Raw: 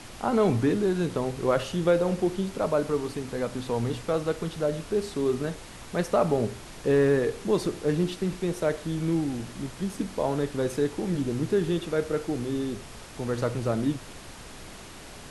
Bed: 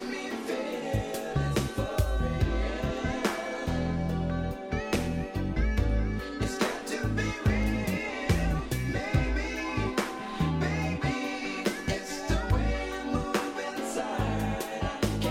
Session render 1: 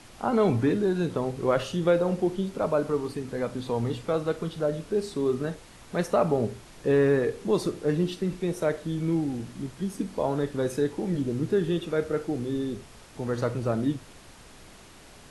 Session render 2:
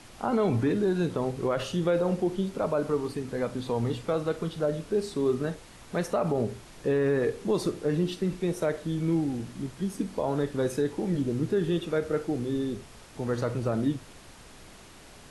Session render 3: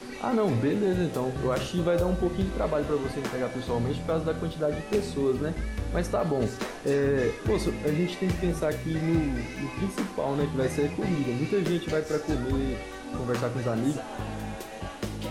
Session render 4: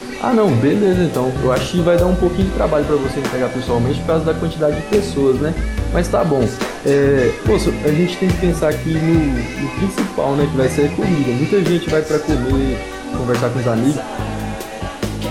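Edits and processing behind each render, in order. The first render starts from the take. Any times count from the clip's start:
noise print and reduce 6 dB
limiter -17 dBFS, peak gain reduction 6 dB
add bed -5.5 dB
gain +11.5 dB; limiter -3 dBFS, peak gain reduction 1 dB

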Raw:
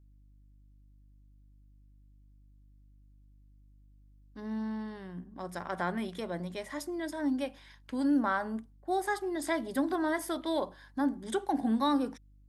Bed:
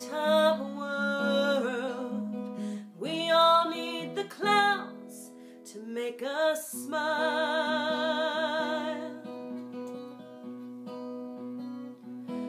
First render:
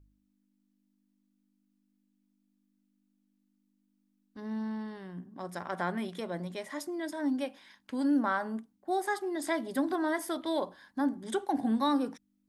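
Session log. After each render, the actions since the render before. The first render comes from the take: de-hum 50 Hz, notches 3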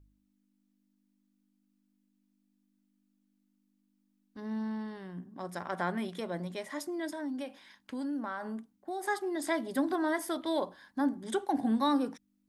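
7.11–9.03 compressor 3:1, threshold -35 dBFS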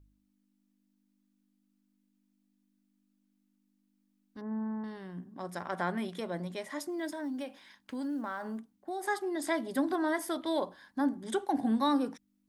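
4.41–4.84 LPF 1500 Hz 24 dB/oct; 6.89–8.6 block floating point 7-bit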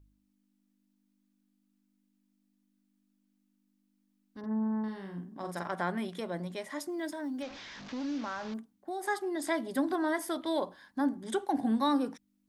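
4.39–5.72 doubler 46 ms -4 dB; 7.42–8.54 delta modulation 32 kbps, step -40.5 dBFS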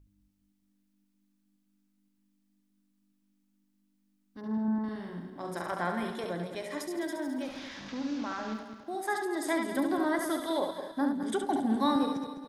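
regenerating reverse delay 0.104 s, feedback 63%, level -8 dB; on a send: echo 70 ms -6.5 dB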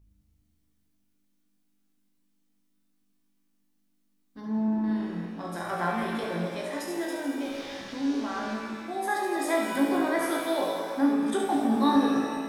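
on a send: flutter echo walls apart 3.1 m, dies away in 0.22 s; on the sum: shimmer reverb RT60 1.8 s, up +7 st, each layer -8 dB, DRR 3 dB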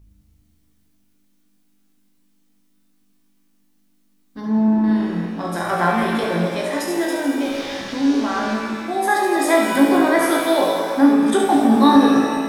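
gain +10.5 dB; limiter -2 dBFS, peak gain reduction 1 dB

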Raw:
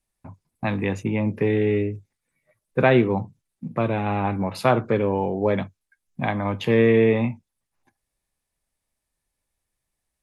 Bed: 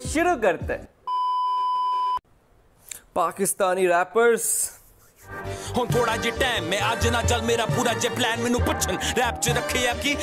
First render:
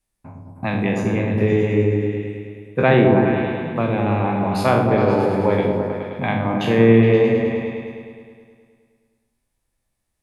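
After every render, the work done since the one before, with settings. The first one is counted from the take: spectral trails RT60 0.63 s; repeats that get brighter 0.105 s, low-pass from 400 Hz, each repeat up 1 oct, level 0 dB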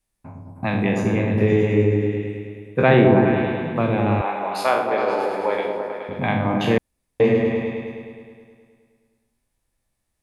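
4.21–6.09 HPF 530 Hz; 6.78–7.2 room tone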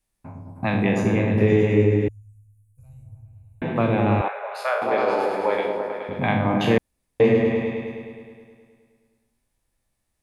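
2.08–3.62 inverse Chebyshev band-stop 180–3700 Hz, stop band 50 dB; 4.28–4.82 rippled Chebyshev high-pass 410 Hz, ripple 9 dB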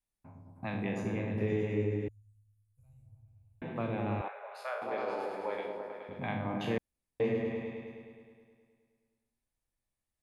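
gain -14 dB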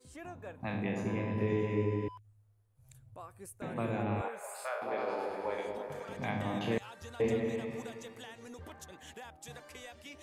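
add bed -26 dB

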